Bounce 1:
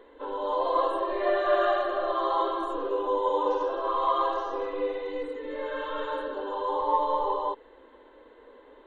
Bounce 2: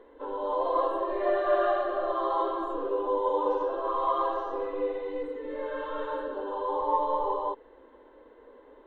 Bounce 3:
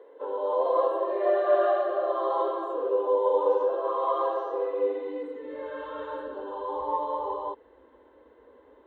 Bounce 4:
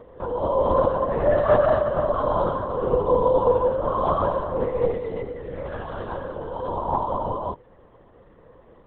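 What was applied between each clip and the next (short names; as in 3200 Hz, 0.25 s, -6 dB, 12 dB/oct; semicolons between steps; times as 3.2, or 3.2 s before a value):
high shelf 2300 Hz -11.5 dB
high-pass sweep 460 Hz -> 68 Hz, 4.79–5.69; gain -2.5 dB
LPC vocoder at 8 kHz whisper; gain +4.5 dB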